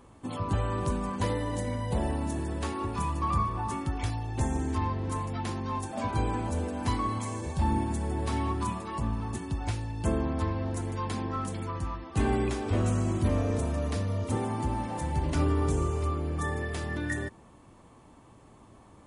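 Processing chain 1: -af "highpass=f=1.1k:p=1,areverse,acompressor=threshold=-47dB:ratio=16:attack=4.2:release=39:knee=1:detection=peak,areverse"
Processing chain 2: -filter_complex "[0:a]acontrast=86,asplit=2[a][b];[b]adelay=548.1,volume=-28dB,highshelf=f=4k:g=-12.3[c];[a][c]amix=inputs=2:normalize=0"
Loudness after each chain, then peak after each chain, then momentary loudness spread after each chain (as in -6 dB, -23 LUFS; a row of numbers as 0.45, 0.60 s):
-49.0, -24.0 LUFS; -36.5, -9.5 dBFS; 1, 6 LU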